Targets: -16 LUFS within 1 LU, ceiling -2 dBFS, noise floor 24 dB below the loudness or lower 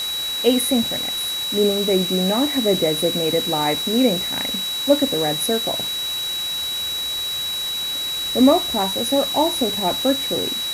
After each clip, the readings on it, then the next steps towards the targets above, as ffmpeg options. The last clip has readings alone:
steady tone 3900 Hz; tone level -23 dBFS; noise floor -25 dBFS; noise floor target -44 dBFS; loudness -19.5 LUFS; peak -2.5 dBFS; loudness target -16.0 LUFS
-> -af "bandreject=f=3.9k:w=30"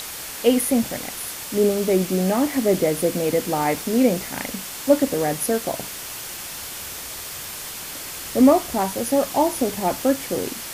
steady tone none; noise floor -34 dBFS; noise floor target -46 dBFS
-> -af "afftdn=nr=12:nf=-34"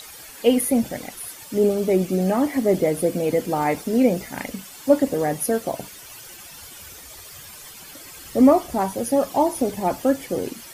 noise floor -42 dBFS; noise floor target -46 dBFS
-> -af "afftdn=nr=6:nf=-42"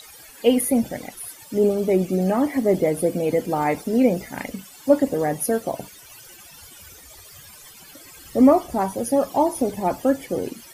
noise floor -45 dBFS; noise floor target -46 dBFS
-> -af "afftdn=nr=6:nf=-45"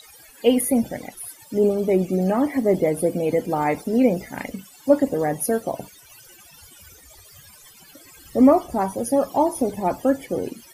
noise floor -49 dBFS; loudness -21.5 LUFS; peak -4.0 dBFS; loudness target -16.0 LUFS
-> -af "volume=5.5dB,alimiter=limit=-2dB:level=0:latency=1"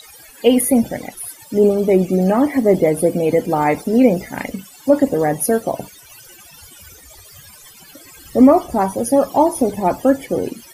loudness -16.5 LUFS; peak -2.0 dBFS; noise floor -43 dBFS

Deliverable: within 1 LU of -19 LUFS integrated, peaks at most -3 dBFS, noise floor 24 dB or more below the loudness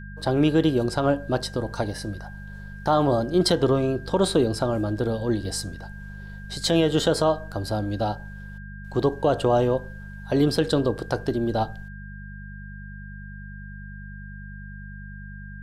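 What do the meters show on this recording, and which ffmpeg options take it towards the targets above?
hum 50 Hz; harmonics up to 200 Hz; hum level -37 dBFS; steady tone 1600 Hz; tone level -44 dBFS; loudness -24.0 LUFS; peak -9.0 dBFS; loudness target -19.0 LUFS
-> -af "bandreject=f=50:t=h:w=4,bandreject=f=100:t=h:w=4,bandreject=f=150:t=h:w=4,bandreject=f=200:t=h:w=4"
-af "bandreject=f=1.6k:w=30"
-af "volume=5dB"

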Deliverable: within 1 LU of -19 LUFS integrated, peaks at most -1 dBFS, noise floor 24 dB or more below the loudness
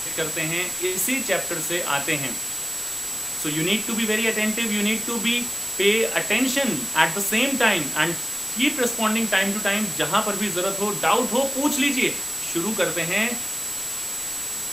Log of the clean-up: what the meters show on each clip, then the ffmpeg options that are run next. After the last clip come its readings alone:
steady tone 7800 Hz; tone level -29 dBFS; noise floor -30 dBFS; noise floor target -46 dBFS; loudness -22.0 LUFS; peak -2.0 dBFS; loudness target -19.0 LUFS
-> -af "bandreject=f=7.8k:w=30"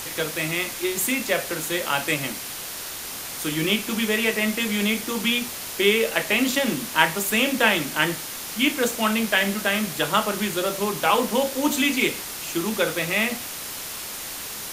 steady tone none; noise floor -34 dBFS; noise floor target -47 dBFS
-> -af "afftdn=nr=13:nf=-34"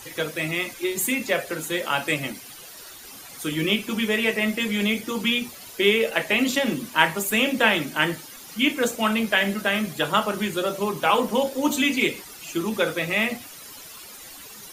noise floor -43 dBFS; noise floor target -47 dBFS
-> -af "afftdn=nr=6:nf=-43"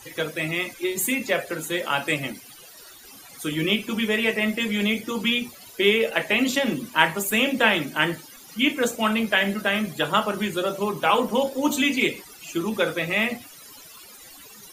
noise floor -46 dBFS; noise floor target -48 dBFS
-> -af "afftdn=nr=6:nf=-46"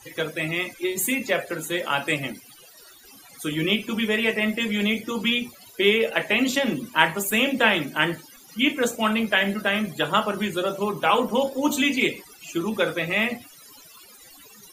noise floor -49 dBFS; loudness -23.5 LUFS; peak -1.5 dBFS; loudness target -19.0 LUFS
-> -af "volume=4.5dB,alimiter=limit=-1dB:level=0:latency=1"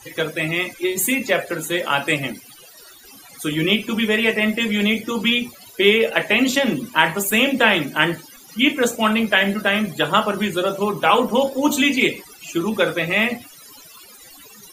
loudness -19.0 LUFS; peak -1.0 dBFS; noise floor -45 dBFS

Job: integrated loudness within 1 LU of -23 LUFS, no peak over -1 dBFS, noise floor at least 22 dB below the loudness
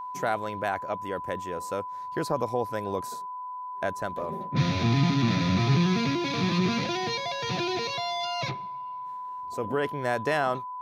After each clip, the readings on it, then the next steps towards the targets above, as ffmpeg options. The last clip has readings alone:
steady tone 1000 Hz; tone level -34 dBFS; loudness -28.5 LUFS; peak -12.5 dBFS; loudness target -23.0 LUFS
-> -af "bandreject=f=1k:w=30"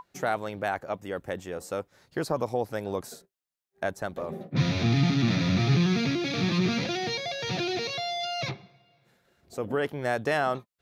steady tone none; loudness -28.5 LUFS; peak -13.0 dBFS; loudness target -23.0 LUFS
-> -af "volume=5.5dB"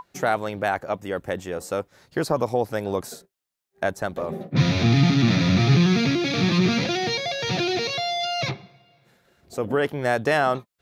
loudness -23.0 LUFS; peak -7.5 dBFS; noise floor -81 dBFS

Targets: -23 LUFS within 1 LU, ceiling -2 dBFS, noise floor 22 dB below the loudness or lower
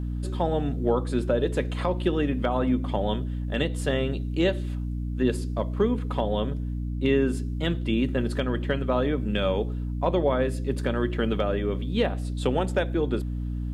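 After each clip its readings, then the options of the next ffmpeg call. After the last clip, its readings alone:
hum 60 Hz; harmonics up to 300 Hz; hum level -27 dBFS; loudness -26.5 LUFS; peak -10.5 dBFS; loudness target -23.0 LUFS
-> -af "bandreject=f=60:t=h:w=4,bandreject=f=120:t=h:w=4,bandreject=f=180:t=h:w=4,bandreject=f=240:t=h:w=4,bandreject=f=300:t=h:w=4"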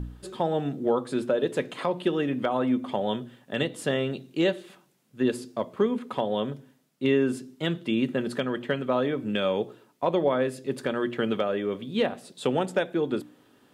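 hum none; loudness -28.0 LUFS; peak -12.5 dBFS; loudness target -23.0 LUFS
-> -af "volume=5dB"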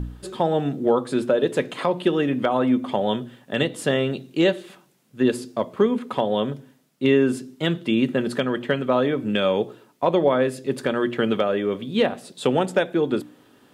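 loudness -23.0 LUFS; peak -7.5 dBFS; noise floor -57 dBFS

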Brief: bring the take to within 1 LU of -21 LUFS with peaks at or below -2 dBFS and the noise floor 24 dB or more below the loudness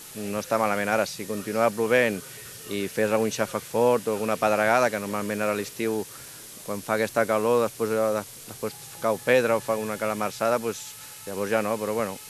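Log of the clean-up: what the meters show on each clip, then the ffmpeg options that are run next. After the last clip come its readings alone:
noise floor -43 dBFS; noise floor target -50 dBFS; loudness -25.5 LUFS; peak -5.5 dBFS; loudness target -21.0 LUFS
-> -af "afftdn=nr=7:nf=-43"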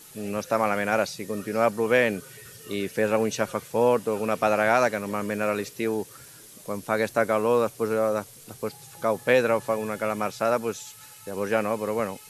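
noise floor -48 dBFS; noise floor target -50 dBFS
-> -af "afftdn=nr=6:nf=-48"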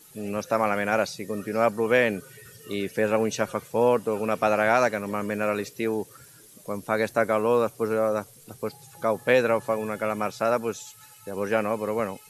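noise floor -51 dBFS; loudness -25.5 LUFS; peak -5.5 dBFS; loudness target -21.0 LUFS
-> -af "volume=4.5dB,alimiter=limit=-2dB:level=0:latency=1"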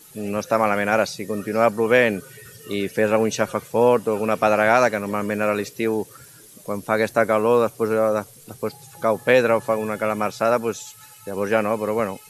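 loudness -21.0 LUFS; peak -2.0 dBFS; noise floor -47 dBFS

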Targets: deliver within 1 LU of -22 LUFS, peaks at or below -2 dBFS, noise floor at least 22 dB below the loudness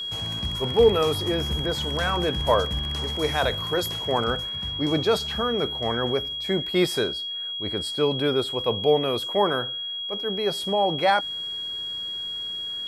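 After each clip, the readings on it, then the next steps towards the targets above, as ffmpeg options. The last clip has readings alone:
steady tone 3300 Hz; tone level -29 dBFS; loudness -24.5 LUFS; peak -7.5 dBFS; loudness target -22.0 LUFS
-> -af "bandreject=f=3.3k:w=30"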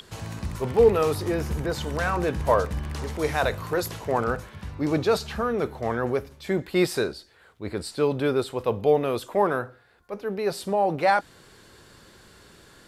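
steady tone none; loudness -25.5 LUFS; peak -8.0 dBFS; loudness target -22.0 LUFS
-> -af "volume=3.5dB"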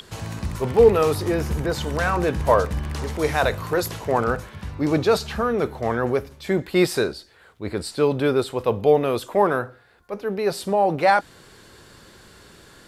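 loudness -22.0 LUFS; peak -4.5 dBFS; noise floor -51 dBFS

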